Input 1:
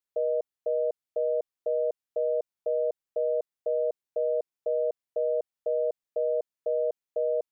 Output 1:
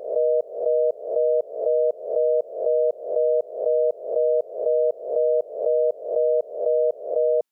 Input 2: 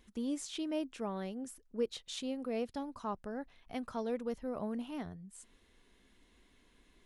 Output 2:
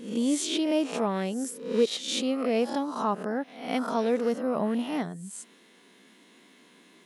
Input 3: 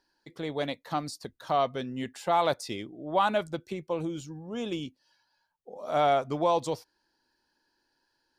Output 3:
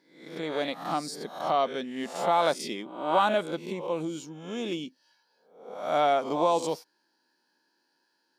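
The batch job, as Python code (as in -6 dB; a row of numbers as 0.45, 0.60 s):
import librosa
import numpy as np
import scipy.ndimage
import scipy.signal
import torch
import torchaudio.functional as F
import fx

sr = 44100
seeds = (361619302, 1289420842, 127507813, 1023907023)

y = fx.spec_swells(x, sr, rise_s=0.58)
y = fx.brickwall_highpass(y, sr, low_hz=150.0)
y = librosa.util.normalize(y) * 10.0 ** (-12 / 20.0)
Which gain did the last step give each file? +7.0, +10.0, 0.0 dB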